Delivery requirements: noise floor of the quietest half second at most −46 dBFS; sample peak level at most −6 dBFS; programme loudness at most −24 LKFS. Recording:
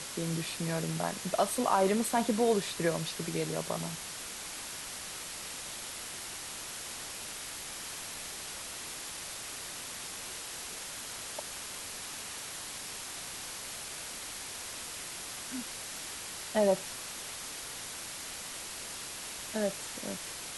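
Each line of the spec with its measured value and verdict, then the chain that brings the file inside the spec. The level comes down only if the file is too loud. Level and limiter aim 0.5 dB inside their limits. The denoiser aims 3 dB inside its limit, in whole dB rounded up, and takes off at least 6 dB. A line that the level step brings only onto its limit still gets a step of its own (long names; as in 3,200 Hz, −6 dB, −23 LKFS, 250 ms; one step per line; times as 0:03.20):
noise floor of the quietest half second −42 dBFS: out of spec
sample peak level −14.5 dBFS: in spec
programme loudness −35.5 LKFS: in spec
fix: broadband denoise 7 dB, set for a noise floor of −42 dBFS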